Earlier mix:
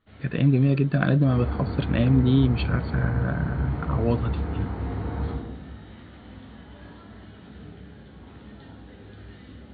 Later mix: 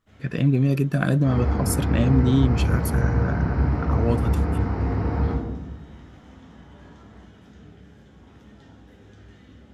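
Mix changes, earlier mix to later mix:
first sound -4.0 dB; second sound +6.0 dB; master: remove brick-wall FIR low-pass 4600 Hz

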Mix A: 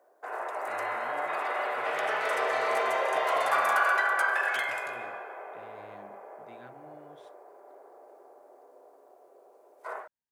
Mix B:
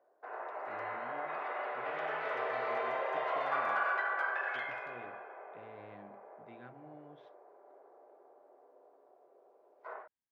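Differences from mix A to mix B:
background -6.0 dB; master: add air absorption 290 m

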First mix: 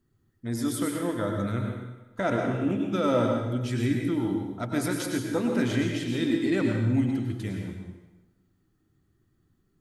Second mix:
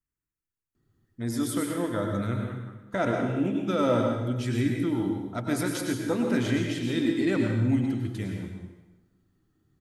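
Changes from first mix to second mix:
first voice: entry +0.75 s; second voice -5.0 dB

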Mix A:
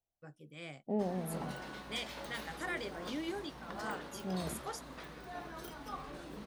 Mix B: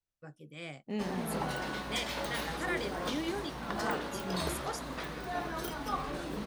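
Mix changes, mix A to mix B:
first voice +3.5 dB; second voice: remove synth low-pass 710 Hz, resonance Q 3.5; background +9.0 dB

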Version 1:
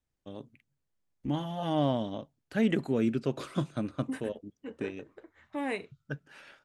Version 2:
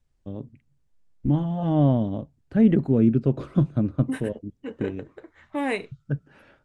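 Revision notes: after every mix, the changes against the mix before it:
first voice: add tilt -4.5 dB/oct; second voice +7.0 dB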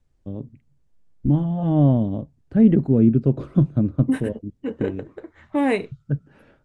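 second voice +5.0 dB; master: add tilt shelf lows +4 dB, about 670 Hz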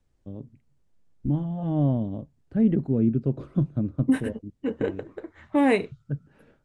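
first voice -6.5 dB

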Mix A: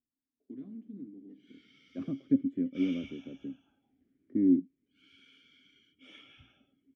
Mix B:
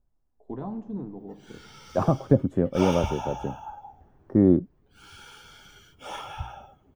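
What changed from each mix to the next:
master: remove vowel filter i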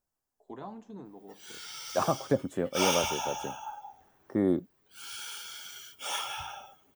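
first voice: send -9.0 dB; master: add tilt +4.5 dB/oct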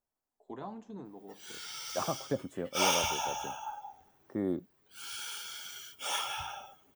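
second voice -6.5 dB

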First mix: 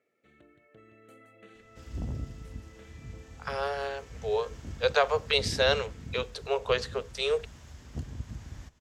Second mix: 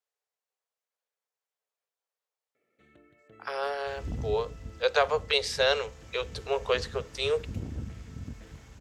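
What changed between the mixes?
first sound: entry +2.55 s; second sound: entry +2.10 s

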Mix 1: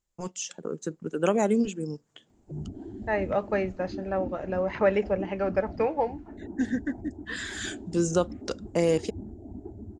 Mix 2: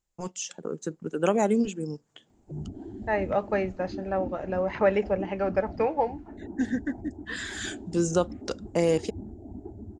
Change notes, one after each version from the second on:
master: add bell 810 Hz +2.5 dB 0.37 oct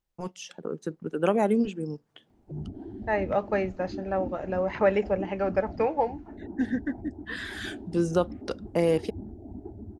first voice: remove synth low-pass 7200 Hz, resonance Q 6.5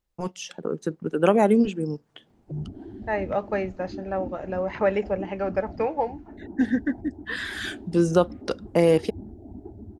first voice +5.0 dB

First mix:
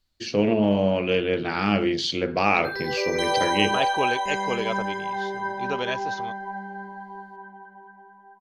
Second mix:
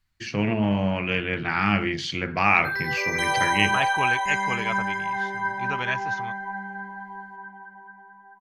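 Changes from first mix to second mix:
background: add high shelf 5300 Hz +6 dB; master: add graphic EQ 125/250/500/1000/2000/4000 Hz +7/-3/-10/+3/+8/-8 dB

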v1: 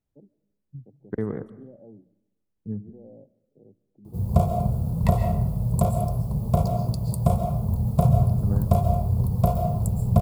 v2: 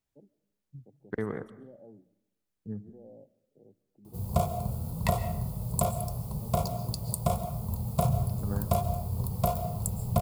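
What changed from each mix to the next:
background: send -7.5 dB; master: add tilt shelf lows -7 dB, about 790 Hz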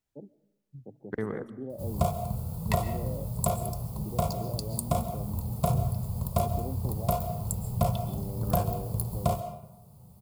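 first voice +11.5 dB; background: entry -2.35 s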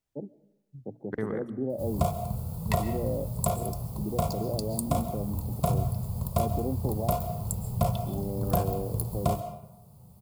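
first voice +7.5 dB

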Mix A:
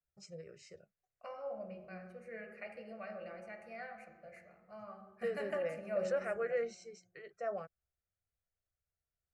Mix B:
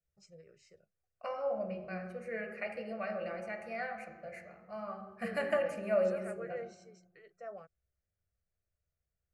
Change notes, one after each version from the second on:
first voice -7.0 dB; second voice +8.0 dB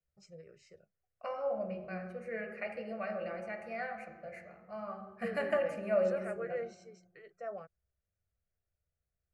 first voice +4.0 dB; master: add high shelf 4600 Hz -6 dB

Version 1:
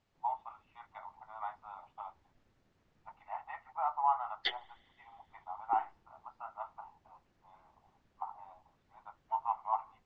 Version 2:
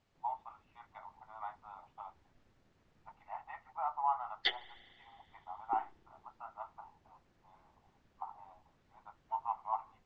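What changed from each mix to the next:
first voice -3.0 dB; second voice: send +8.5 dB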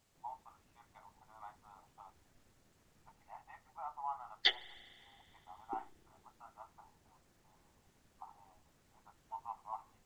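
first voice -9.0 dB; master: remove air absorption 150 m

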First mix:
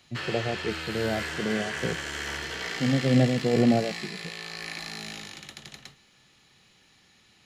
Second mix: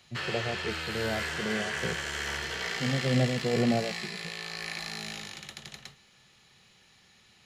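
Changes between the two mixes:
speech -3.5 dB; master: add bell 290 Hz -11.5 dB 0.24 oct

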